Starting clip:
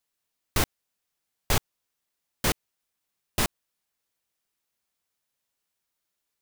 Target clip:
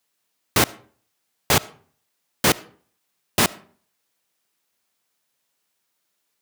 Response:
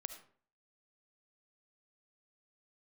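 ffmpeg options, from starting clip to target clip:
-filter_complex "[0:a]highpass=130,asplit=2[link_01][link_02];[1:a]atrim=start_sample=2205,highshelf=frequency=9100:gain=-6.5[link_03];[link_02][link_03]afir=irnorm=-1:irlink=0,volume=-6.5dB[link_04];[link_01][link_04]amix=inputs=2:normalize=0,volume=6dB"

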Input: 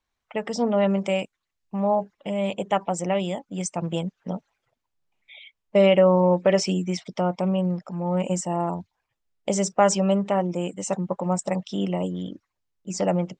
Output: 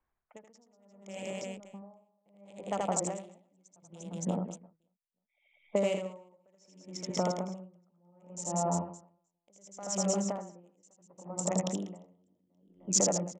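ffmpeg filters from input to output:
ffmpeg -i in.wav -filter_complex "[0:a]acrossover=split=190|2000[link_01][link_02][link_03];[link_03]acrusher=bits=4:mix=0:aa=0.5[link_04];[link_01][link_02][link_04]amix=inputs=3:normalize=0,acompressor=threshold=-27dB:ratio=6,lowpass=frequency=6800:width_type=q:width=5,aecho=1:1:80|192|348.8|568.3|875.6:0.631|0.398|0.251|0.158|0.1,aeval=exprs='val(0)*pow(10,-39*(0.5-0.5*cos(2*PI*0.69*n/s))/20)':channel_layout=same" out.wav

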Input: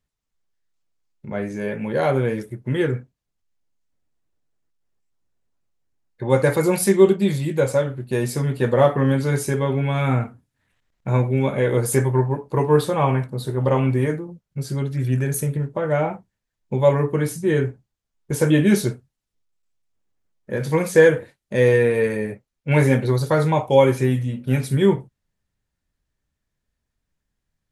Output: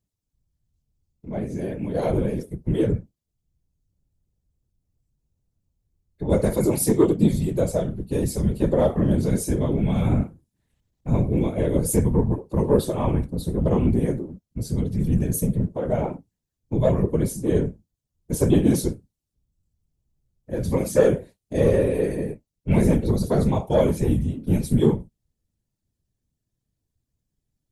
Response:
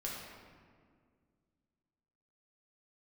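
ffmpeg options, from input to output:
-af "equalizer=frequency=1600:width_type=o:width=2.1:gain=-14.5,acontrast=74,afftfilt=real='hypot(re,im)*cos(2*PI*random(0))':imag='hypot(re,im)*sin(2*PI*random(1))':win_size=512:overlap=0.75"

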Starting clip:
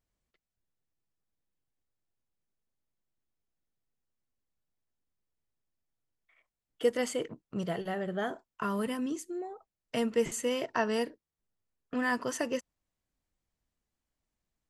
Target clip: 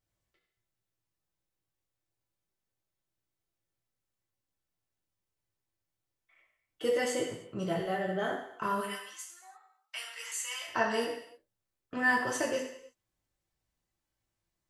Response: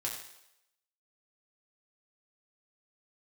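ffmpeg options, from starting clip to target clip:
-filter_complex "[0:a]asplit=3[link_01][link_02][link_03];[link_01]afade=type=out:start_time=8.8:duration=0.02[link_04];[link_02]highpass=frequency=1100:width=0.5412,highpass=frequency=1100:width=1.3066,afade=type=in:start_time=8.8:duration=0.02,afade=type=out:start_time=10.67:duration=0.02[link_05];[link_03]afade=type=in:start_time=10.67:duration=0.02[link_06];[link_04][link_05][link_06]amix=inputs=3:normalize=0[link_07];[1:a]atrim=start_sample=2205,afade=type=out:start_time=0.39:duration=0.01,atrim=end_sample=17640[link_08];[link_07][link_08]afir=irnorm=-1:irlink=0"

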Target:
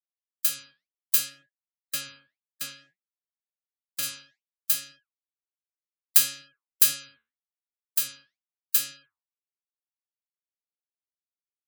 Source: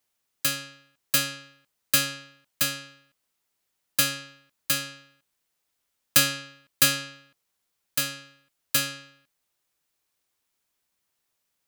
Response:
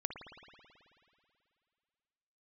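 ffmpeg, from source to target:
-filter_complex "[0:a]asplit=3[link_01][link_02][link_03];[link_01]afade=type=out:start_time=1.28:duration=0.02[link_04];[link_02]lowpass=frequency=3100:poles=1,afade=type=in:start_time=1.28:duration=0.02,afade=type=out:start_time=4.02:duration=0.02[link_05];[link_03]afade=type=in:start_time=4.02:duration=0.02[link_06];[link_04][link_05][link_06]amix=inputs=3:normalize=0,afftfilt=real='re*gte(hypot(re,im),0.0112)':imag='im*gte(hypot(re,im),0.0112)':win_size=1024:overlap=0.75,crystalizer=i=5:c=0,flanger=delay=5:depth=8.5:regen=75:speed=2:shape=sinusoidal,volume=-11.5dB"

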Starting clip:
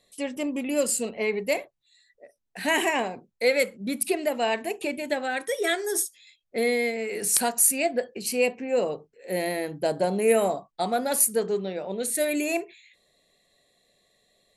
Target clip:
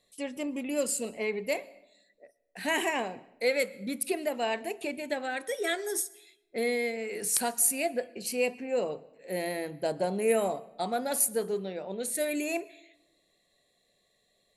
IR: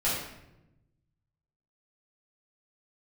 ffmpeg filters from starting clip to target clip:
-filter_complex "[0:a]asplit=2[link_01][link_02];[1:a]atrim=start_sample=2205,adelay=105[link_03];[link_02][link_03]afir=irnorm=-1:irlink=0,volume=-31.5dB[link_04];[link_01][link_04]amix=inputs=2:normalize=0,volume=-5dB"

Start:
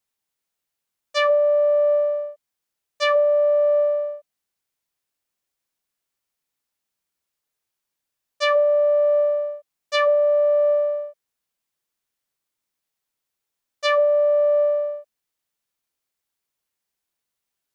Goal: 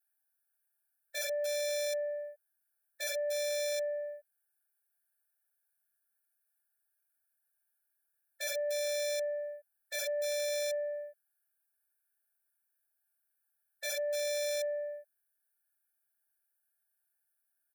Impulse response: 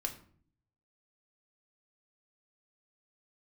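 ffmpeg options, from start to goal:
-af "firequalizer=gain_entry='entry(190,0);entry(290,-15);entry(510,-13);entry(850,-3);entry(1900,5);entry(3000,-28);entry(4600,-13);entry(6600,-15);entry(9700,7)':delay=0.05:min_phase=1,acompressor=threshold=-39dB:ratio=1.5,aeval=exprs='(mod(25.1*val(0)+1,2)-1)/25.1':channel_layout=same,afftfilt=real='re*eq(mod(floor(b*sr/1024/450),2),1)':imag='im*eq(mod(floor(b*sr/1024/450),2),1)':win_size=1024:overlap=0.75"

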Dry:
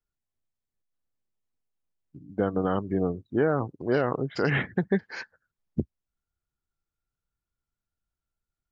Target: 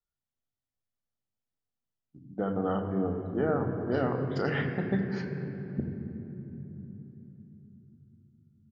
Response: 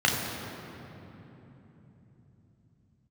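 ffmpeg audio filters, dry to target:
-filter_complex "[0:a]asplit=2[link_01][link_02];[1:a]atrim=start_sample=2205,lowpass=5400[link_03];[link_02][link_03]afir=irnorm=-1:irlink=0,volume=-16dB[link_04];[link_01][link_04]amix=inputs=2:normalize=0,aresample=16000,aresample=44100,volume=-7dB"

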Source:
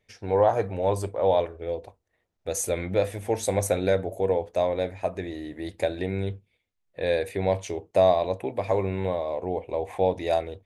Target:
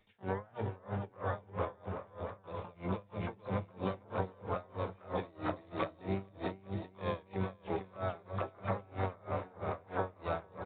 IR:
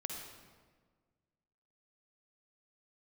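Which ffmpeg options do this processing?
-filter_complex "[0:a]bandreject=frequency=60:width_type=h:width=6,bandreject=frequency=120:width_type=h:width=6,bandreject=frequency=180:width_type=h:width=6,bandreject=frequency=240:width_type=h:width=6,bandreject=frequency=300:width_type=h:width=6,bandreject=frequency=360:width_type=h:width=6,bandreject=frequency=420:width_type=h:width=6,bandreject=frequency=480:width_type=h:width=6,acrossover=split=180[link_01][link_02];[link_02]acompressor=threshold=-30dB:ratio=10[link_03];[link_01][link_03]amix=inputs=2:normalize=0,asplit=3[link_04][link_05][link_06];[link_05]asetrate=55563,aresample=44100,atempo=0.793701,volume=-12dB[link_07];[link_06]asetrate=88200,aresample=44100,atempo=0.5,volume=-4dB[link_08];[link_04][link_07][link_08]amix=inputs=3:normalize=0,aresample=8000,aresample=44100,asplit=2[link_09][link_10];[link_10]aecho=0:1:450|832.5|1158|1434|1669:0.631|0.398|0.251|0.158|0.1[link_11];[link_09][link_11]amix=inputs=2:normalize=0,acompressor=threshold=-31dB:ratio=6,aeval=exprs='val(0)*pow(10,-27*(0.5-0.5*cos(2*PI*3.1*n/s))/20)':channel_layout=same,volume=2dB"

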